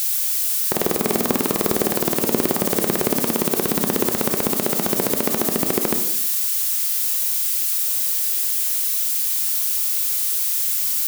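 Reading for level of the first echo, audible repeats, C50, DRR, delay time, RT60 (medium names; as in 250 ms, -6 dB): no echo, no echo, 7.5 dB, 5.0 dB, no echo, 0.80 s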